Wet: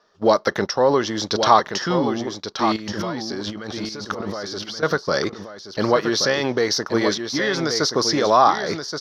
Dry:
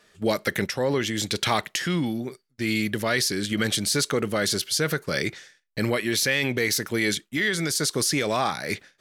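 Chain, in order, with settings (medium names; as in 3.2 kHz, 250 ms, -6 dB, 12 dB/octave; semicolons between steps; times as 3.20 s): companding laws mixed up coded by A; 2.76–4.83 s: compressor with a negative ratio -35 dBFS, ratio -1; FFT filter 130 Hz 0 dB, 1.1 kHz +15 dB, 2.3 kHz -4 dB, 5.6 kHz +9 dB, 8.2 kHz -21 dB, 15 kHz -16 dB; delay 1126 ms -7.5 dB; dynamic bell 2.3 kHz, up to -4 dB, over -42 dBFS, Q 6.8; trim -1 dB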